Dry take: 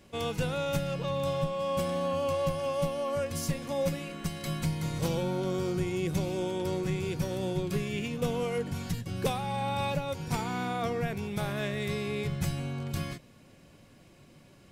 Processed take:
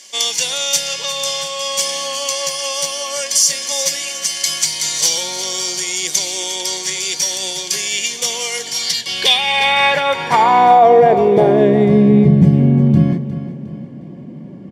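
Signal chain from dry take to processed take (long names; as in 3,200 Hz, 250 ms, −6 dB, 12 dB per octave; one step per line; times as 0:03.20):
low-shelf EQ 430 Hz −4.5 dB
notch filter 1,500 Hz, Q 16
in parallel at −0.5 dB: hard clipping −26.5 dBFS, distortion −21 dB
on the sum: band-pass filter sweep 6,100 Hz → 200 Hz, 0:08.65–0:12.16
on a send: repeating echo 358 ms, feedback 44%, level −13.5 dB
on the sum: dynamic equaliser 1,200 Hz, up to −4 dB, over −52 dBFS, Q 1
notch comb filter 1,300 Hz
boost into a limiter +29 dB
level −1 dB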